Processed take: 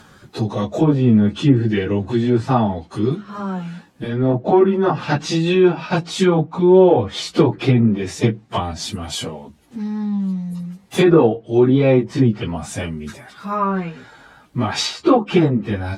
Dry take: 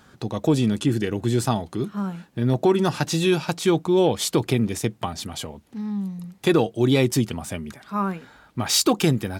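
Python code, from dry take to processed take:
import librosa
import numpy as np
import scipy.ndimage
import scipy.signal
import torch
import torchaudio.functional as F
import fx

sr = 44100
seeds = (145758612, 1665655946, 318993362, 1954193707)

y = fx.env_lowpass_down(x, sr, base_hz=1600.0, full_db=-16.0)
y = fx.stretch_vocoder_free(y, sr, factor=1.7)
y = y * 10.0 ** (8.5 / 20.0)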